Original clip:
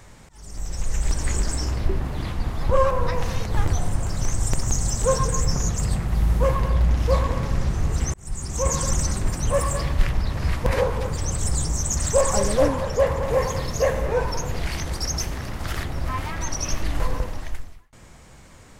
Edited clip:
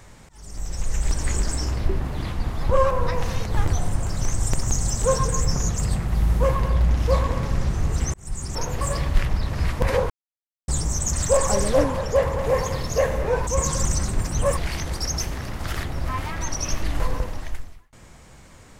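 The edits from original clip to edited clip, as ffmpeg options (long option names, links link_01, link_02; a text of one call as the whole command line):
ffmpeg -i in.wav -filter_complex "[0:a]asplit=7[link_01][link_02][link_03][link_04][link_05][link_06][link_07];[link_01]atrim=end=8.552[link_08];[link_02]atrim=start=14.308:end=14.572[link_09];[link_03]atrim=start=9.648:end=10.94,asetpts=PTS-STARTPTS,afade=type=out:start_time=1.288:duration=0.004:curve=hsin[link_10];[link_04]atrim=start=10.94:end=11.52,asetpts=PTS-STARTPTS,volume=0[link_11];[link_05]atrim=start=11.52:end=14.312,asetpts=PTS-STARTPTS,afade=type=in:duration=0.004:curve=hsin[link_12];[link_06]atrim=start=8.548:end=9.652[link_13];[link_07]atrim=start=14.568[link_14];[link_08][link_09]acrossfade=duration=0.004:curve1=hsin:curve2=hsin[link_15];[link_10][link_11][link_12]concat=n=3:v=0:a=1[link_16];[link_15][link_16]acrossfade=duration=0.004:curve1=hsin:curve2=hsin[link_17];[link_17][link_13]acrossfade=duration=0.004:curve1=hsin:curve2=hsin[link_18];[link_18][link_14]acrossfade=duration=0.004:curve1=hsin:curve2=hsin" out.wav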